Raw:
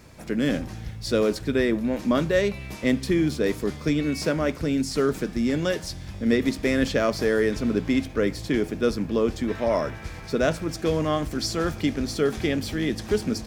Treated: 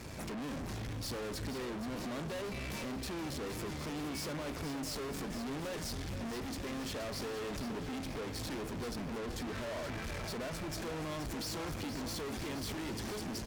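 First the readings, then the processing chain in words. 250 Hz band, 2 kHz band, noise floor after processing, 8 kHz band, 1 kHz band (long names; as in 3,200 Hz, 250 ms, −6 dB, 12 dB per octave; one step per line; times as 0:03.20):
−16.0 dB, −13.0 dB, −41 dBFS, −7.0 dB, −10.0 dB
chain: downward compressor, threshold −27 dBFS, peak gain reduction 10.5 dB
tube saturation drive 46 dB, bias 0.65
on a send: repeating echo 473 ms, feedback 58%, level −10 dB
on the sum: level +7 dB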